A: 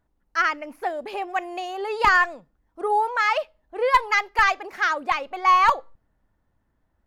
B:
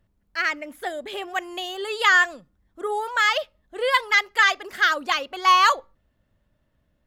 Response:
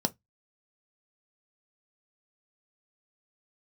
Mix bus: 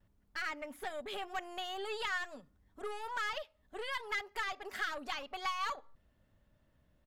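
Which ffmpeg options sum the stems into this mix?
-filter_complex "[0:a]lowpass=1.6k,acompressor=threshold=-22dB:ratio=6,aeval=exprs='(tanh(39.8*val(0)+0.65)-tanh(0.65))/39.8':c=same,volume=-8.5dB,asplit=2[a][b];[1:a]acrossover=split=940|7200[c][d][e];[c]acompressor=threshold=-40dB:ratio=4[f];[d]acompressor=threshold=-26dB:ratio=4[g];[e]acompressor=threshold=-52dB:ratio=4[h];[f][g][h]amix=inputs=3:normalize=0,volume=-1,adelay=5.1,volume=-2.5dB[i];[b]apad=whole_len=311744[j];[i][j]sidechaincompress=threshold=-48dB:ratio=8:attack=16:release=317[k];[a][k]amix=inputs=2:normalize=0"

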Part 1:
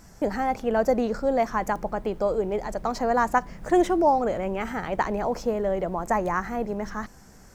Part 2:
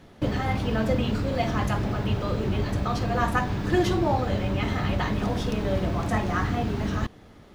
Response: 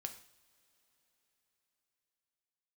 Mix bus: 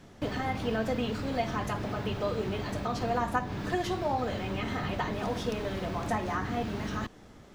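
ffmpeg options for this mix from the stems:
-filter_complex "[0:a]lowpass=7.9k,volume=-11dB[a];[1:a]acrossover=split=130|940[b][c][d];[b]acompressor=threshold=-39dB:ratio=4[e];[c]acompressor=threshold=-31dB:ratio=4[f];[d]acompressor=threshold=-34dB:ratio=4[g];[e][f][g]amix=inputs=3:normalize=0,volume=-2.5dB[h];[a][h]amix=inputs=2:normalize=0"

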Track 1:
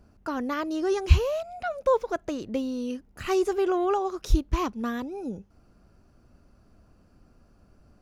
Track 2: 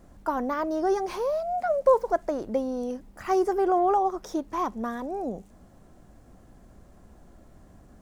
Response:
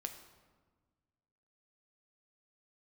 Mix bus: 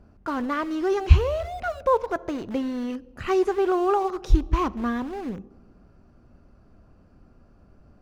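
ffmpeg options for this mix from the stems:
-filter_complex "[0:a]volume=1.5dB,asplit=2[a][b];[b]volume=-7dB[c];[1:a]acrusher=bits=4:mix=0:aa=0.000001,volume=-1,volume=-10dB[d];[2:a]atrim=start_sample=2205[e];[c][e]afir=irnorm=-1:irlink=0[f];[a][d][f]amix=inputs=3:normalize=0,lowpass=f=2.1k:p=1"

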